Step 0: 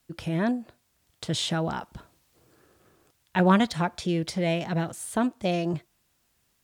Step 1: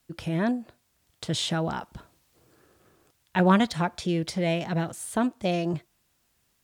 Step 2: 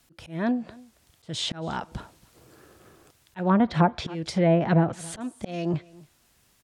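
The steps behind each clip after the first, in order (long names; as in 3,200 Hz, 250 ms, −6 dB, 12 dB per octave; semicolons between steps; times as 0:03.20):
no processing that can be heard
volume swells 474 ms; single-tap delay 276 ms −23 dB; treble cut that deepens with the level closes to 1,100 Hz, closed at −23 dBFS; level +7.5 dB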